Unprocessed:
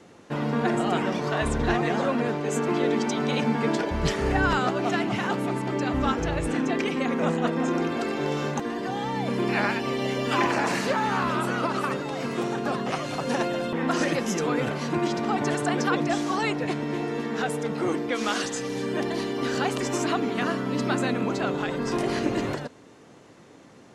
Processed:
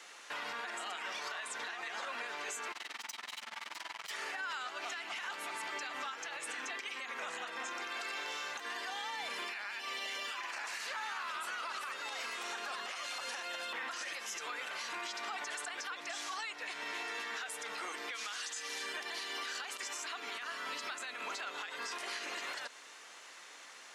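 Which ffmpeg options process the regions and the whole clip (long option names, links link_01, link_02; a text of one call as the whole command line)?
ffmpeg -i in.wav -filter_complex "[0:a]asettb=1/sr,asplit=3[link_01][link_02][link_03];[link_01]atrim=end=2.724[link_04];[link_02]atrim=start=2.72:end=4.11,asetpts=PTS-STARTPTS,afade=type=in:duration=0.004:curve=qsin,afade=type=out:start_time=1.386:duration=0.004:curve=qsin,aecho=1:1:1:0.67,atrim=end_sample=61299,aeval=exprs='(tanh(44.7*val(0)+0.55)-tanh(0.55))/44.7':channel_layout=same,tremolo=f=21:d=0.974[link_05];[link_03]atrim=start=4.106[link_06];[link_04][link_05]acrossfade=duration=0.004:curve1=hsin:curve2=qsin[link_07];[link_07][link_06]acrossfade=duration=0.004:curve1=qsin:curve2=hsin,highpass=1500,acompressor=threshold=-43dB:ratio=10,alimiter=level_in=15dB:limit=-24dB:level=0:latency=1:release=36,volume=-15dB,volume=7.5dB" out.wav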